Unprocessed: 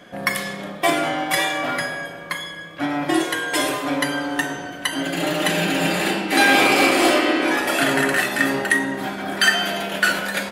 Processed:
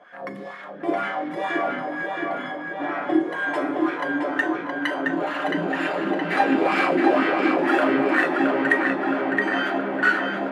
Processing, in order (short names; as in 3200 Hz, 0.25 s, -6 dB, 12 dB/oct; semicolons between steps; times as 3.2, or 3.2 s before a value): LFO band-pass sine 2.1 Hz 260–1600 Hz; darkening echo 0.669 s, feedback 68%, low-pass 4900 Hz, level -3 dB; gain +2.5 dB